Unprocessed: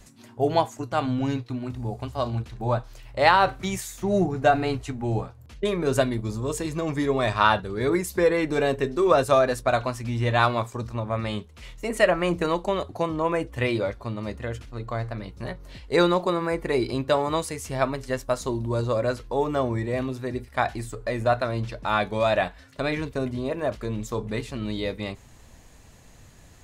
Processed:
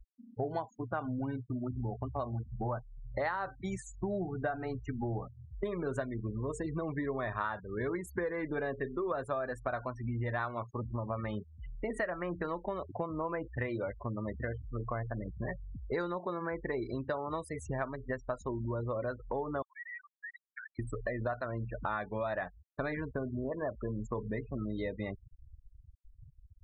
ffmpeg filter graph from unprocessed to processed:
-filter_complex "[0:a]asettb=1/sr,asplit=3[s0][s1][s2];[s0]atrim=end=19.624[s3];[s1]atrim=start=19.62:end=20.79,asetpts=PTS-STARTPTS,afade=t=in:d=0.004:c=qsin,afade=t=out:st=1.166:d=0.004:c=qsin,highpass=f=1400:w=0.5412,highpass=f=1400:w=1.3066,acompressor=threshold=0.01:ratio=6:attack=3.2:release=140:knee=1:detection=peak[s4];[s2]atrim=start=20.786[s5];[s3][s4]acrossfade=d=0.004:c1=hsin:c2=qsin[s6];[s6][s5]acrossfade=d=0.004:c1=qsin:c2=hsin,asettb=1/sr,asplit=3[s7][s8][s9];[s7]atrim=end=23.444[s10];[s8]atrim=start=23.44:end=24.78,asetpts=PTS-STARTPTS,afade=t=in:d=0.004:c=qsin,afade=t=out:st=1.336:d=0.004:c=qsin,lowpass=9300,adynamicequalizer=threshold=0.00631:dfrequency=1800:dqfactor=0.7:tfrequency=1800:tqfactor=0.7:attack=5:release=100:ratio=0.375:range=2.5:mode=cutabove:tftype=highshelf[s11];[s9]atrim=start=24.776[s12];[s10][s11]acrossfade=d=0.004:c1=hsin:c2=qsin[s13];[s13][s12]acrossfade=d=0.004:c1=qsin:c2=hsin,afftfilt=real='re*gte(hypot(re,im),0.0282)':imag='im*gte(hypot(re,im),0.0282)':win_size=1024:overlap=0.75,highshelf=f=2200:t=q:w=3:g=-6,acompressor=threshold=0.0224:ratio=6"

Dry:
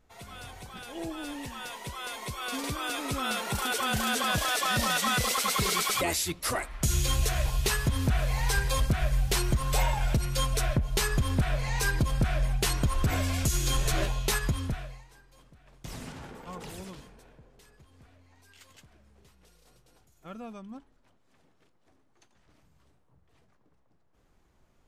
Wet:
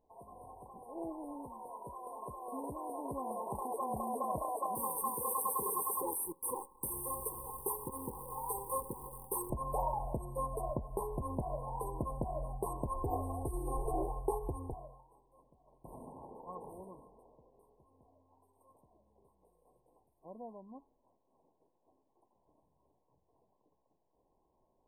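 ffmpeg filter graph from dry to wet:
-filter_complex "[0:a]asettb=1/sr,asplit=3[s0][s1][s2];[s0]atrim=end=4.754[s3];[s1]atrim=start=4.75:end=9.5,asetpts=PTS-STARTPTS,afade=t=in:d=0.004:c=qsin,afade=t=out:st=4.746:d=0.004:c=qsin,aemphasis=mode=production:type=bsi,acrusher=bits=6:dc=4:mix=0:aa=0.000001,asuperstop=centerf=650:order=20:qfactor=2.9[s4];[s2]atrim=start=9.496[s5];[s3][s4]acrossfade=d=0.004:c1=hsin:c2=qsin[s6];[s6][s5]acrossfade=d=0.004:c1=qsin:c2=hsin,asettb=1/sr,asplit=3[s7][s8][s9];[s7]atrim=end=13.044[s10];[s8]atrim=start=13.04:end=14.74,asetpts=PTS-STARTPTS,afade=t=in:d=0.004:c=qsin,afade=t=out:st=1.696:d=0.004:c=qsin,acrossover=split=9800[s11][s12];[s12]acompressor=threshold=0.00562:ratio=4:attack=1:release=60[s13];[s11][s13]amix=inputs=2:normalize=0,aecho=1:1:2.5:0.77,atrim=end_sample=74970[s14];[s9]atrim=start=14.736[s15];[s10][s14]acrossfade=d=0.004:c1=hsin:c2=qsin[s16];[s16][s15]acrossfade=d=0.004:c1=qsin:c2=hsin,afftfilt=real='re*(1-between(b*sr/4096,1100,8300))':imag='im*(1-between(b*sr/4096,1100,8300))':win_size=4096:overlap=0.75,bass=f=250:g=-13,treble=f=4000:g=-14,volume=0.794"

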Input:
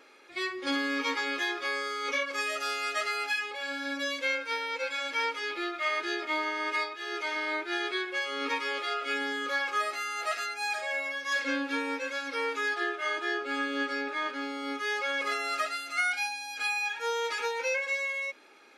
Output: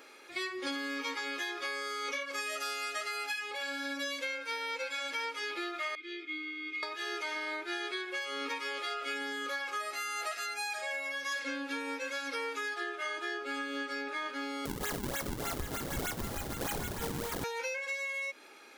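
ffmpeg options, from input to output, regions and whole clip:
-filter_complex "[0:a]asettb=1/sr,asplit=3[s0][s1][s2];[s0]atrim=end=5.954[s3];[s1]atrim=start=5.95:end=6.83,asetpts=PTS-STARTPTS,afade=t=in:d=0.004:c=qsin,afade=t=out:st=0.876:d=0.004:c=qsin,asplit=3[s4][s5][s6];[s4]bandpass=f=270:t=q:w=8,volume=1[s7];[s5]bandpass=f=2290:t=q:w=8,volume=0.501[s8];[s6]bandpass=f=3010:t=q:w=8,volume=0.355[s9];[s7][s8][s9]amix=inputs=3:normalize=0,aecho=1:1:5.7:0.85,atrim=end_sample=38808[s10];[s2]atrim=start=6.826[s11];[s3][s10]acrossfade=d=0.004:c1=hsin:c2=qsin[s12];[s12][s11]acrossfade=d=0.004:c1=qsin:c2=hsin,asettb=1/sr,asplit=3[s13][s14][s15];[s13]atrim=end=14.654[s16];[s14]atrim=start=14.65:end=17.44,asetpts=PTS-STARTPTS,afade=t=in:d=0.004:c=qsin,afade=t=out:st=2.786:d=0.004:c=qsin,acrusher=samples=41:mix=1:aa=0.000001:lfo=1:lforange=65.6:lforate=3.3,equalizer=f=2500:t=o:w=0.22:g=-5,aecho=1:1:768:0.422,atrim=end_sample=123039[s17];[s15]atrim=start=17.436[s18];[s16][s17]acrossfade=d=0.004:c1=hsin:c2=qsin[s19];[s19][s18]acrossfade=d=0.004:c1=qsin:c2=hsin,acompressor=threshold=0.0158:ratio=6,highshelf=f=7700:g=10.5,volume=1.19"

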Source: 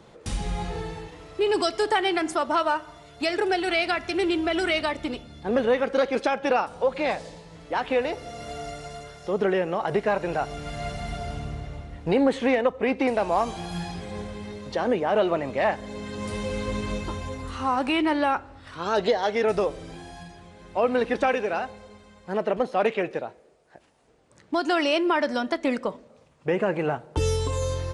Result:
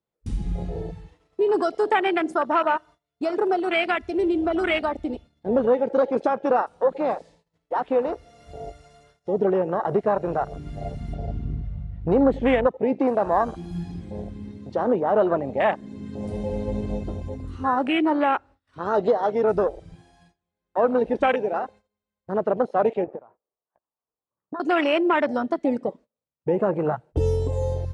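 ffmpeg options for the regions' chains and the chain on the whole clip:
-filter_complex "[0:a]asettb=1/sr,asplit=3[s0][s1][s2];[s0]atrim=end=11.144[s3];[s1]atrim=start=11.14:end=12.67,asetpts=PTS-STARTPTS,afade=t=in:d=0.004:c=qsin,afade=t=out:st=1.526:d=0.004:c=qsin,aeval=exprs='val(0)+0.0178*(sin(2*PI*50*n/s)+sin(2*PI*2*50*n/s)/2+sin(2*PI*3*50*n/s)/3+sin(2*PI*4*50*n/s)/4+sin(2*PI*5*50*n/s)/5)':c=same,adynamicsmooth=sensitivity=6.5:basefreq=4800[s4];[s2]atrim=start=12.666[s5];[s3][s4]acrossfade=d=0.004:c1=hsin:c2=qsin[s6];[s6][s5]acrossfade=d=0.004:c1=qsin:c2=hsin,asettb=1/sr,asplit=3[s7][s8][s9];[s7]atrim=end=23.044[s10];[s8]atrim=start=23.04:end=24.6,asetpts=PTS-STARTPTS,afade=t=in:d=0.004:c=qsin,afade=t=out:st=1.556:d=0.004:c=qsin,lowpass=f=1100:t=q:w=3.8,acompressor=threshold=0.0316:ratio=12:attack=3.2:release=140:knee=1:detection=peak[s11];[s9]atrim=start=24.596[s12];[s10][s11]acrossfade=d=0.004:c1=hsin:c2=qsin[s13];[s13][s12]acrossfade=d=0.004:c1=qsin:c2=hsin,agate=range=0.0708:threshold=0.00794:ratio=16:detection=peak,afwtdn=0.0501,volume=1.33"

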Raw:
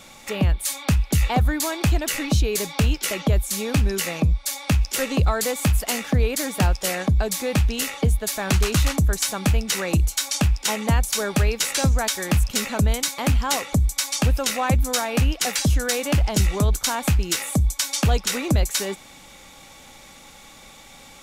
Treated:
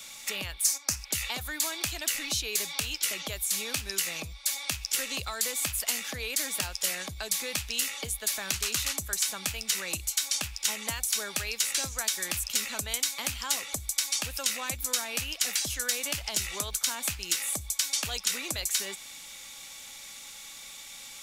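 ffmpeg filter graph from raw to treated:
-filter_complex "[0:a]asettb=1/sr,asplit=3[s0][s1][s2];[s0]atrim=end=0.644[s3];[s1]atrim=start=0.64:end=1.05,asetpts=PTS-STARTPTS,afade=t=in:d=0.004:c=qsin,afade=t=out:st=0.406:d=0.004:c=qsin,highshelf=f=4400:t=q:w=3:g=9,agate=range=0.355:threshold=0.0447:ratio=16:release=100:detection=peak[s4];[s2]atrim=start=1.046[s5];[s3][s4]acrossfade=d=0.004:c1=hsin:c2=qsin[s6];[s6][s5]acrossfade=d=0.004:c1=qsin:c2=hsin,tiltshelf=f=1500:g=-9.5,bandreject=f=750:w=19,acrossover=split=81|400|3300[s7][s8][s9][s10];[s7]acompressor=threshold=0.00794:ratio=4[s11];[s8]acompressor=threshold=0.00708:ratio=4[s12];[s9]acompressor=threshold=0.0282:ratio=4[s13];[s10]acompressor=threshold=0.0631:ratio=4[s14];[s11][s12][s13][s14]amix=inputs=4:normalize=0,volume=0.631"

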